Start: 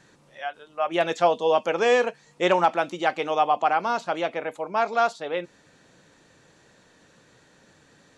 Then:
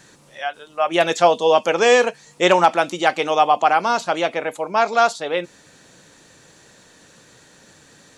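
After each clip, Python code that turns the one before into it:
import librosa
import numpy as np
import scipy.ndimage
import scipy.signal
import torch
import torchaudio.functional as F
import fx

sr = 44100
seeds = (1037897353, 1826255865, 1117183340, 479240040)

y = fx.high_shelf(x, sr, hz=5100.0, db=11.0)
y = F.gain(torch.from_numpy(y), 5.5).numpy()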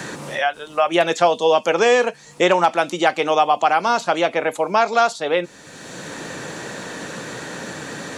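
y = fx.band_squash(x, sr, depth_pct=70)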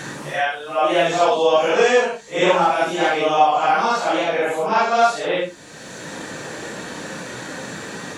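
y = fx.phase_scramble(x, sr, seeds[0], window_ms=200)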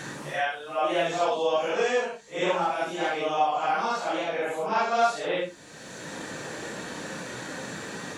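y = fx.rider(x, sr, range_db=4, speed_s=2.0)
y = F.gain(torch.from_numpy(y), -9.0).numpy()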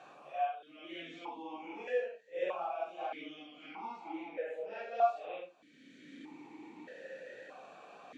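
y = fx.vowel_held(x, sr, hz=1.6)
y = F.gain(torch.from_numpy(y), -3.0).numpy()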